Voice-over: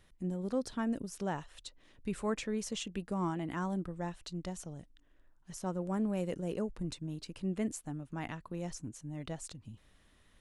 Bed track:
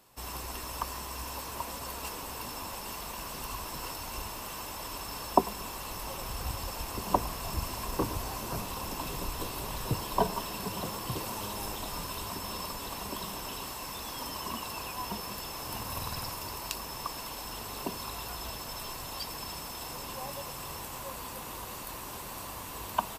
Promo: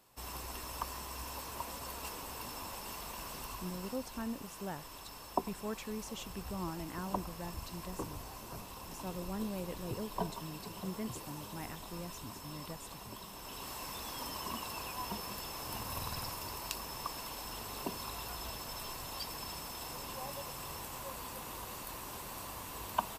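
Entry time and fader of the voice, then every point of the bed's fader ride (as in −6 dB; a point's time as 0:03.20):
3.40 s, −6.0 dB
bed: 0:03.33 −4.5 dB
0:04.10 −10.5 dB
0:13.31 −10.5 dB
0:13.75 −3.5 dB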